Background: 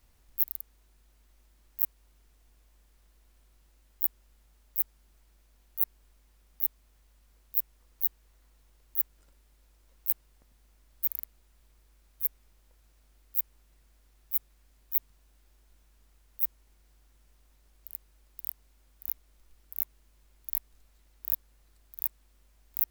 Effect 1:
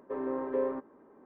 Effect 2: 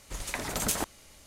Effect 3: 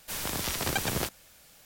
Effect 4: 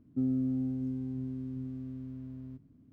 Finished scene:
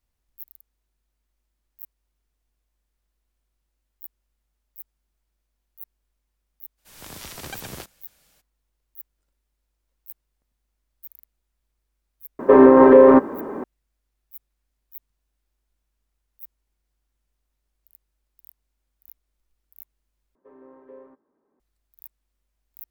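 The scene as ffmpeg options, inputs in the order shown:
-filter_complex "[1:a]asplit=2[s0][s1];[0:a]volume=0.211[s2];[3:a]dynaudnorm=f=150:g=3:m=3.76[s3];[s0]alimiter=level_in=23.7:limit=0.891:release=50:level=0:latency=1[s4];[s2]asplit=2[s5][s6];[s5]atrim=end=20.354[s7];[s1]atrim=end=1.25,asetpts=PTS-STARTPTS,volume=0.168[s8];[s6]atrim=start=21.596[s9];[s3]atrim=end=1.65,asetpts=PTS-STARTPTS,volume=0.133,afade=t=in:d=0.02,afade=t=out:st=1.63:d=0.02,adelay=6770[s10];[s4]atrim=end=1.25,asetpts=PTS-STARTPTS,volume=0.891,afade=t=in:d=0.004:c=hsin,afade=t=out:st=1.246:d=0.004:c=hsin,adelay=12390[s11];[s7][s8]acrossfade=d=0.004:c1=hsin:c2=hsin[s12];[s12][s9]acrossfade=d=0.004:c1=hsin:c2=hsin[s13];[s13][s10][s11]amix=inputs=3:normalize=0"

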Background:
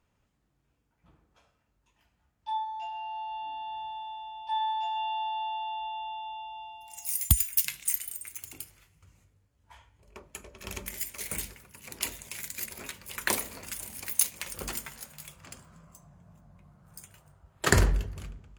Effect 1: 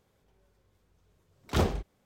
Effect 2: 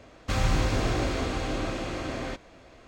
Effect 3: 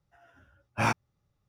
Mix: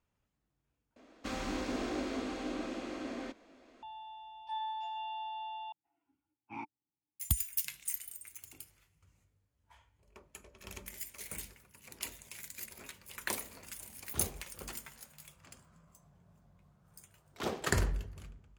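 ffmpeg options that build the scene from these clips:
-filter_complex "[1:a]asplit=2[s0][s1];[0:a]volume=0.376[s2];[2:a]lowshelf=f=180:t=q:w=3:g=-10[s3];[3:a]asplit=3[s4][s5][s6];[s4]bandpass=f=300:t=q:w=8,volume=1[s7];[s5]bandpass=f=870:t=q:w=8,volume=0.501[s8];[s6]bandpass=f=2240:t=q:w=8,volume=0.355[s9];[s7][s8][s9]amix=inputs=3:normalize=0[s10];[s1]highpass=240[s11];[s2]asplit=3[s12][s13][s14];[s12]atrim=end=0.964[s15];[s3]atrim=end=2.87,asetpts=PTS-STARTPTS,volume=0.316[s16];[s13]atrim=start=3.826:end=5.724[s17];[s10]atrim=end=1.48,asetpts=PTS-STARTPTS,volume=0.531[s18];[s14]atrim=start=7.196[s19];[s0]atrim=end=2.05,asetpts=PTS-STARTPTS,volume=0.178,afade=t=in:d=0.004:c=hsin,afade=t=out:st=2.046:d=0.004:c=hsin,adelay=12610[s20];[s11]atrim=end=2.05,asetpts=PTS-STARTPTS,volume=0.422,afade=t=in:d=0.004:c=hsin,afade=t=out:st=2.046:d=0.004:c=hsin,adelay=15870[s21];[s15][s16]acrossfade=d=0.004:c1=hsin:c2=hsin[s22];[s22][s17]acrossfade=d=0.004:c1=hsin:c2=hsin[s23];[s23][s18]acrossfade=d=0.004:c1=hsin:c2=hsin[s24];[s24][s19]acrossfade=d=0.004:c1=hsin:c2=hsin[s25];[s25][s20][s21]amix=inputs=3:normalize=0"

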